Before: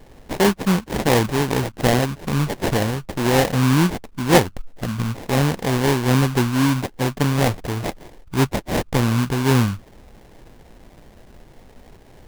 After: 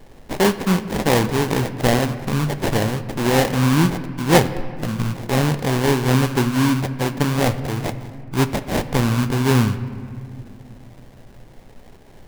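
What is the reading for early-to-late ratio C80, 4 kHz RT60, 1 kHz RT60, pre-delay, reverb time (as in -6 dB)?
13.5 dB, 1.4 s, 2.1 s, 4 ms, 2.2 s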